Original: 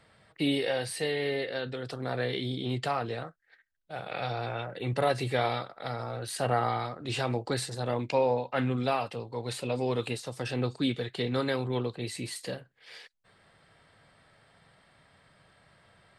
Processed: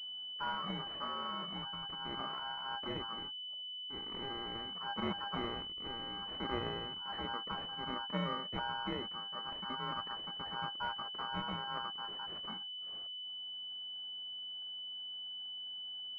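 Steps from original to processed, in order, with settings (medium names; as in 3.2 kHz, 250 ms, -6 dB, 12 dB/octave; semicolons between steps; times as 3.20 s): every band turned upside down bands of 500 Hz; ring modulator 1.2 kHz; class-D stage that switches slowly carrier 3 kHz; trim -5.5 dB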